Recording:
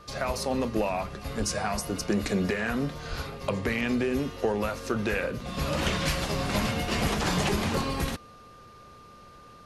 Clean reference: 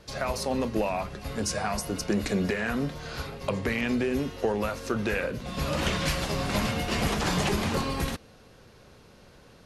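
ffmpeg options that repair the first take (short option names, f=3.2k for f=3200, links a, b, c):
-filter_complex "[0:a]bandreject=f=1.2k:w=30,asplit=3[a][b][c];[a]afade=t=out:st=1.38:d=0.02[d];[b]highpass=f=140:w=0.5412,highpass=f=140:w=1.3066,afade=t=in:st=1.38:d=0.02,afade=t=out:st=1.5:d=0.02[e];[c]afade=t=in:st=1.5:d=0.02[f];[d][e][f]amix=inputs=3:normalize=0,asplit=3[g][h][i];[g]afade=t=out:st=3.09:d=0.02[j];[h]highpass=f=140:w=0.5412,highpass=f=140:w=1.3066,afade=t=in:st=3.09:d=0.02,afade=t=out:st=3.21:d=0.02[k];[i]afade=t=in:st=3.21:d=0.02[l];[j][k][l]amix=inputs=3:normalize=0"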